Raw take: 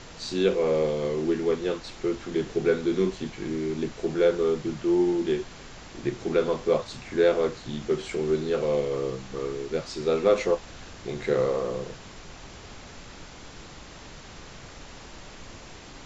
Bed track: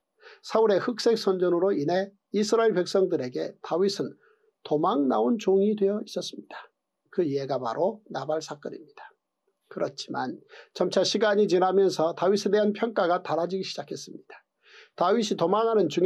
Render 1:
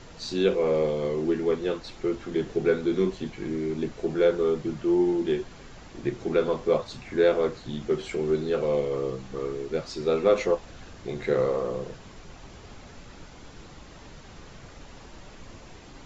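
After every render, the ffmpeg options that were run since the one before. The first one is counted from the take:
-af "afftdn=nr=6:nf=-45"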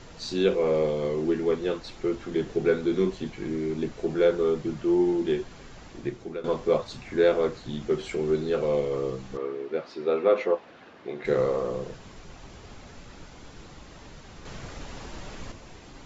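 -filter_complex "[0:a]asettb=1/sr,asplit=3[s0][s1][s2];[s0]atrim=end=9.374[s3];[s1]atrim=start=9.37:end=11.25,asetpts=PTS-STARTPTS,afade=t=in:d=0.004:c=qsin,afade=t=out:st=1.876:d=0.004:c=qsin,highpass=270,lowpass=2800[s4];[s2]atrim=start=11.246[s5];[s3][s4]acrossfade=d=0.004:c1=hsin:c2=qsin[s6];[s6][s5]acrossfade=d=0.004:c1=qsin:c2=hsin,asettb=1/sr,asplit=3[s7][s8][s9];[s7]atrim=end=14.454[s10];[s8]atrim=start=14.45:end=15.52,asetpts=PTS-STARTPTS,afade=t=in:d=0.004:c=qsin,afade=t=out:st=1.066:d=0.004:c=qsin,acontrast=52[s11];[s9]atrim=start=15.516[s12];[s10][s11]acrossfade=d=0.004:c1=hsin:c2=qsin[s13];[s13][s12]acrossfade=d=0.004:c1=qsin:c2=hsin,asplit=2[s14][s15];[s14]atrim=end=6.44,asetpts=PTS-STARTPTS,afade=t=out:st=5.9:d=0.54:silence=0.158489[s16];[s15]atrim=start=6.44,asetpts=PTS-STARTPTS,afade=t=in:d=0.004:c=hsin:silence=0.158489[s17];[s16][s17]concat=n=2:v=0:a=1"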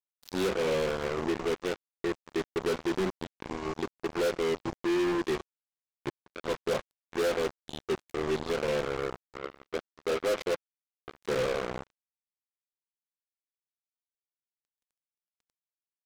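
-af "acrusher=bits=3:mix=0:aa=0.5,asoftclip=type=hard:threshold=0.0631"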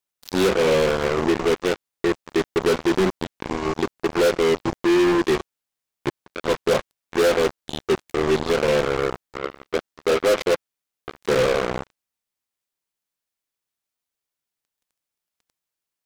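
-af "volume=3.16"

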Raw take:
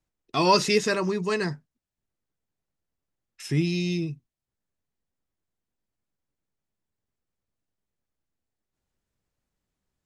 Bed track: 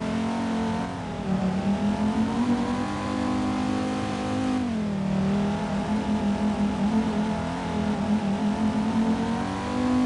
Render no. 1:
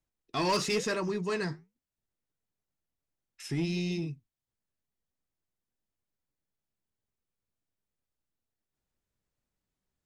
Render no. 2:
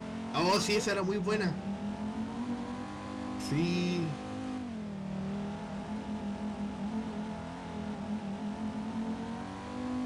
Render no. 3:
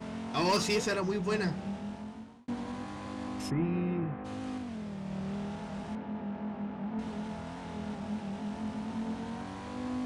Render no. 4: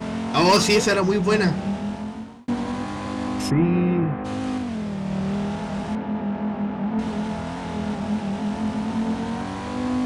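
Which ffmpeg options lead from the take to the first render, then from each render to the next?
-af "flanger=delay=1.3:depth=9.7:regen=-77:speed=0.99:shape=triangular,asoftclip=type=tanh:threshold=0.075"
-filter_complex "[1:a]volume=0.237[s0];[0:a][s0]amix=inputs=2:normalize=0"
-filter_complex "[0:a]asplit=3[s0][s1][s2];[s0]afade=t=out:st=3.49:d=0.02[s3];[s1]lowpass=f=2000:w=0.5412,lowpass=f=2000:w=1.3066,afade=t=in:st=3.49:d=0.02,afade=t=out:st=4.24:d=0.02[s4];[s2]afade=t=in:st=4.24:d=0.02[s5];[s3][s4][s5]amix=inputs=3:normalize=0,asettb=1/sr,asplit=3[s6][s7][s8];[s6]atrim=end=5.954[s9];[s7]atrim=start=5.95:end=6.99,asetpts=PTS-STARTPTS,afade=t=in:d=0.004:c=qsin,afade=t=out:st=1.036:d=0.004:c=qsin,highpass=110,lowpass=2100[s10];[s8]atrim=start=6.986[s11];[s9][s10]acrossfade=d=0.004:c1=hsin:c2=qsin[s12];[s12][s11]acrossfade=d=0.004:c1=qsin:c2=hsin,asplit=2[s13][s14];[s13]atrim=end=2.48,asetpts=PTS-STARTPTS,afade=t=out:st=1.67:d=0.81[s15];[s14]atrim=start=2.48,asetpts=PTS-STARTPTS,afade=t=in:d=0.004:c=hsin[s16];[s15][s16]concat=n=2:v=0:a=1"
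-af "volume=3.76"

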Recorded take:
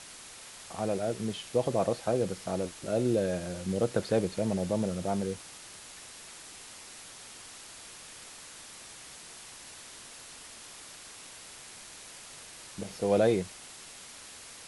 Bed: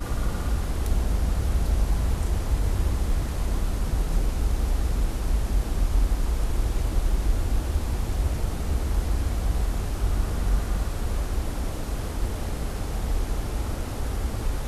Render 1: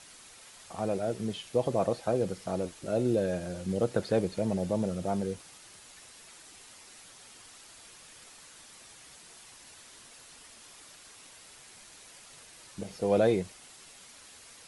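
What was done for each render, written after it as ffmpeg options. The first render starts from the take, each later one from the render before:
-af "afftdn=nr=6:nf=-48"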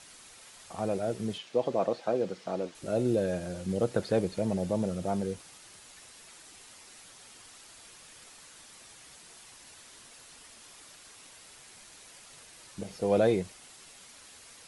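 -filter_complex "[0:a]asettb=1/sr,asplit=3[s0][s1][s2];[s0]atrim=end=1.384[s3];[s1]atrim=start=1.38:end=2.75,asetpts=PTS-STARTPTS,afade=t=in:d=0.004:c=qsin,afade=t=out:st=1.366:d=0.004:c=qsin,highpass=210,lowpass=5400[s4];[s2]atrim=start=2.746[s5];[s3][s4]acrossfade=d=0.004:c1=hsin:c2=qsin[s6];[s6][s5]acrossfade=d=0.004:c1=qsin:c2=hsin"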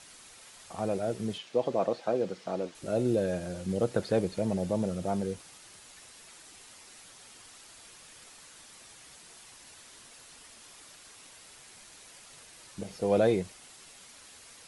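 -af anull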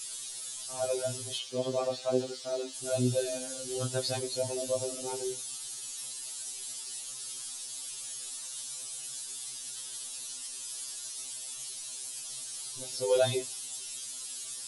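-af "aexciter=amount=2.7:drive=8.8:freq=3000,afftfilt=real='re*2.45*eq(mod(b,6),0)':imag='im*2.45*eq(mod(b,6),0)':win_size=2048:overlap=0.75"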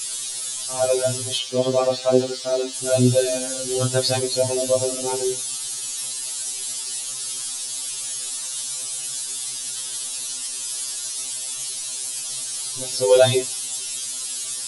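-af "volume=3.76"

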